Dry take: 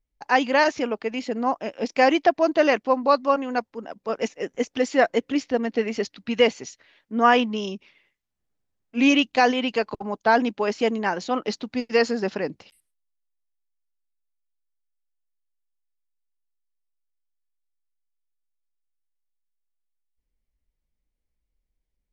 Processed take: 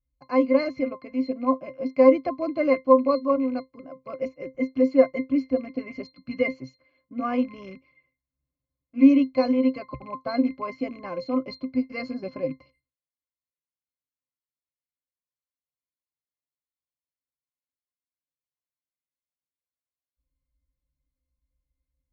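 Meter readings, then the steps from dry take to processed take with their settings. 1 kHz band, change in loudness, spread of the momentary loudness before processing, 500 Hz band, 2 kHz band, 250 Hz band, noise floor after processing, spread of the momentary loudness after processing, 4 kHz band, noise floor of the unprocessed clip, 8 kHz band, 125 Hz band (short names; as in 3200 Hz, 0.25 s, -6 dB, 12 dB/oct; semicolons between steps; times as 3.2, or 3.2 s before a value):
-8.5 dB, -1.5 dB, 12 LU, -1.0 dB, -11.5 dB, +2.0 dB, under -85 dBFS, 19 LU, -14.5 dB, -80 dBFS, n/a, -4.5 dB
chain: rattling part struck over -37 dBFS, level -26 dBFS; octave resonator C, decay 0.14 s; gain +8.5 dB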